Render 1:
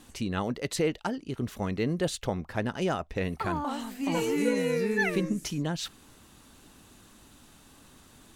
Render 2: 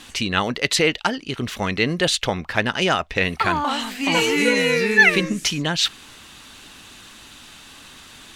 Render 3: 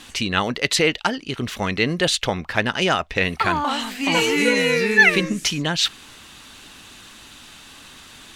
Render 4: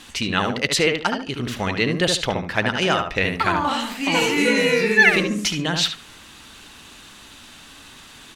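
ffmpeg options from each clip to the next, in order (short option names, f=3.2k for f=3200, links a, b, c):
-af "equalizer=f=2.9k:w=0.42:g=14,volume=4.5dB"
-af anull
-filter_complex "[0:a]asplit=2[a][b];[b]adelay=72,lowpass=f=1.9k:p=1,volume=-4dB,asplit=2[c][d];[d]adelay=72,lowpass=f=1.9k:p=1,volume=0.27,asplit=2[e][f];[f]adelay=72,lowpass=f=1.9k:p=1,volume=0.27,asplit=2[g][h];[h]adelay=72,lowpass=f=1.9k:p=1,volume=0.27[i];[a][c][e][g][i]amix=inputs=5:normalize=0,volume=-1dB"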